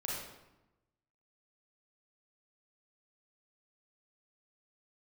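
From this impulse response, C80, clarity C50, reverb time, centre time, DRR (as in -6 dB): 2.5 dB, -1.0 dB, 0.95 s, 73 ms, -5.0 dB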